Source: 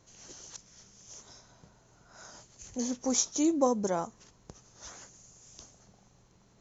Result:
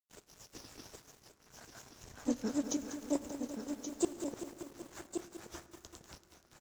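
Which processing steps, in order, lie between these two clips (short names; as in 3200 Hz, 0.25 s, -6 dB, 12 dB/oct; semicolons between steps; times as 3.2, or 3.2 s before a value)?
LPF 3100 Hz 6 dB/oct; in parallel at -4.5 dB: soft clip -29.5 dBFS, distortion -8 dB; on the sum: flipped gate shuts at -20 dBFS, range -32 dB; grains 0.158 s, grains 25/s, spray 0.712 s, pitch spread up and down by 3 st; crossover distortion -57.5 dBFS; tremolo saw up 6.6 Hz, depth 30%; echo 1.127 s -7.5 dB; reverb RT60 4.0 s, pre-delay 6 ms, DRR 12.5 dB; lo-fi delay 0.193 s, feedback 80%, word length 10-bit, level -10 dB; gain +8 dB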